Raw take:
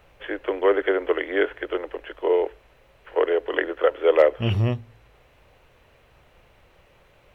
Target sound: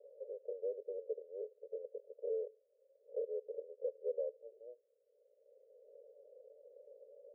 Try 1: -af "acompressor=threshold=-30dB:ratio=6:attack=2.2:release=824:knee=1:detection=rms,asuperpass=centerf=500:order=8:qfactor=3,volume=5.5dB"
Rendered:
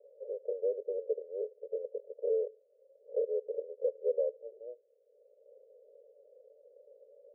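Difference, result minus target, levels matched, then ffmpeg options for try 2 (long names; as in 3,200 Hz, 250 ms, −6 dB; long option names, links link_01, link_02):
downward compressor: peak gain reduction −7.5 dB
-af "acompressor=threshold=-39dB:ratio=6:attack=2.2:release=824:knee=1:detection=rms,asuperpass=centerf=500:order=8:qfactor=3,volume=5.5dB"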